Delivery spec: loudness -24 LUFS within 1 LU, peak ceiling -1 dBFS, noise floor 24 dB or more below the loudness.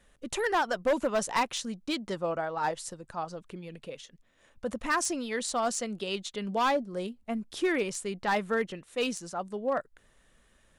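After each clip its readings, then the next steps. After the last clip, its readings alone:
clipped samples 0.7%; clipping level -21.0 dBFS; loudness -31.0 LUFS; peak level -21.0 dBFS; loudness target -24.0 LUFS
-> clip repair -21 dBFS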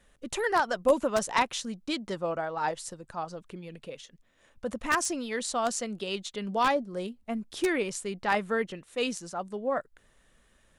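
clipped samples 0.0%; loudness -30.5 LUFS; peak level -12.0 dBFS; loudness target -24.0 LUFS
-> trim +6.5 dB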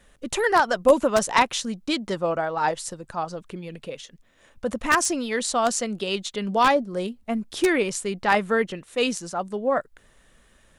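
loudness -24.0 LUFS; peak level -5.5 dBFS; noise floor -59 dBFS

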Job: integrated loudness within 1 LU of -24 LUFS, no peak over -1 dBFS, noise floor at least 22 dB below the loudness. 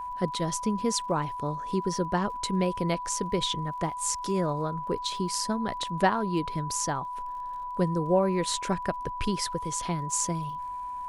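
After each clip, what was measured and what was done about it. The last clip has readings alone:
tick rate 45 per s; steady tone 990 Hz; tone level -33 dBFS; loudness -29.0 LUFS; peak level -11.0 dBFS; loudness target -24.0 LUFS
-> de-click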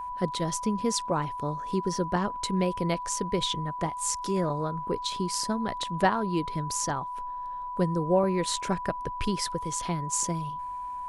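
tick rate 0 per s; steady tone 990 Hz; tone level -33 dBFS
-> band-stop 990 Hz, Q 30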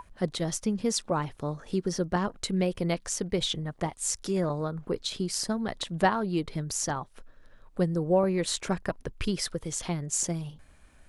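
steady tone not found; loudness -30.0 LUFS; peak level -11.0 dBFS; loudness target -24.0 LUFS
-> trim +6 dB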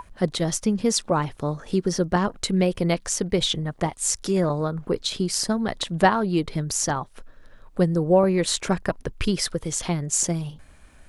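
loudness -24.0 LUFS; peak level -5.0 dBFS; noise floor -51 dBFS

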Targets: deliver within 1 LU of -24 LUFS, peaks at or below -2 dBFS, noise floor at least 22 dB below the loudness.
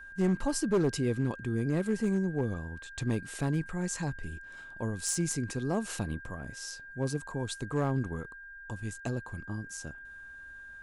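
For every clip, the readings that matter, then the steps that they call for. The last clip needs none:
clipped samples 0.8%; clipping level -21.5 dBFS; steady tone 1.6 kHz; tone level -45 dBFS; loudness -33.0 LUFS; peak level -21.5 dBFS; loudness target -24.0 LUFS
-> clip repair -21.5 dBFS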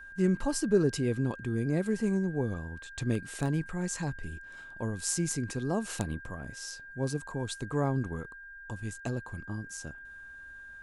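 clipped samples 0.0%; steady tone 1.6 kHz; tone level -45 dBFS
-> band-stop 1.6 kHz, Q 30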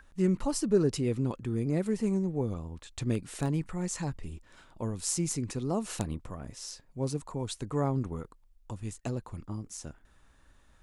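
steady tone not found; loudness -32.5 LUFS; peak level -12.5 dBFS; loudness target -24.0 LUFS
-> trim +8.5 dB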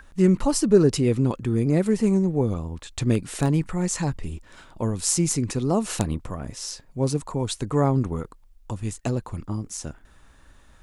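loudness -24.0 LUFS; peak level -4.0 dBFS; noise floor -53 dBFS

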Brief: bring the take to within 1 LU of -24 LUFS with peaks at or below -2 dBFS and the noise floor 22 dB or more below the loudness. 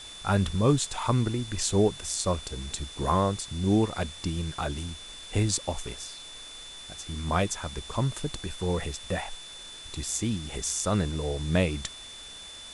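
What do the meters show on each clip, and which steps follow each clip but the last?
steady tone 3.5 kHz; tone level -43 dBFS; noise floor -44 dBFS; noise floor target -51 dBFS; loudness -29.0 LUFS; peak level -10.0 dBFS; loudness target -24.0 LUFS
-> band-stop 3.5 kHz, Q 30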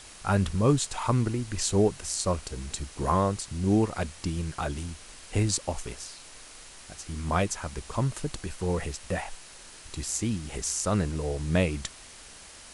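steady tone not found; noise floor -48 dBFS; noise floor target -51 dBFS
-> noise reduction 6 dB, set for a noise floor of -48 dBFS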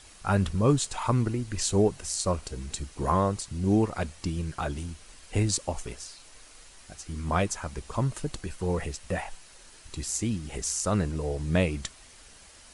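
noise floor -52 dBFS; loudness -29.0 LUFS; peak level -10.0 dBFS; loudness target -24.0 LUFS
-> trim +5 dB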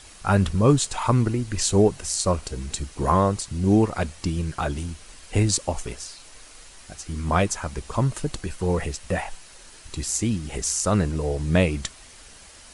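loudness -24.0 LUFS; peak level -5.0 dBFS; noise floor -47 dBFS

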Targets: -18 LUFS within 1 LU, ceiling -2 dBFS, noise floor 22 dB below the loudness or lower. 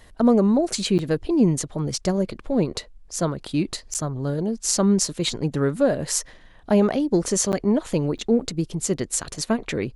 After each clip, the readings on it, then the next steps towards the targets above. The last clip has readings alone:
dropouts 4; longest dropout 9.1 ms; loudness -23.0 LUFS; peak level -4.5 dBFS; loudness target -18.0 LUFS
-> interpolate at 0.98/3.94/7.52/8.18 s, 9.1 ms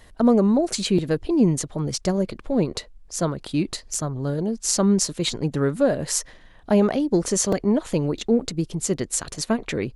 dropouts 0; loudness -23.0 LUFS; peak level -4.5 dBFS; loudness target -18.0 LUFS
-> trim +5 dB; peak limiter -2 dBFS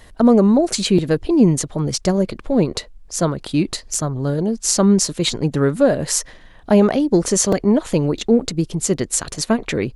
loudness -18.0 LUFS; peak level -2.0 dBFS; noise floor -44 dBFS

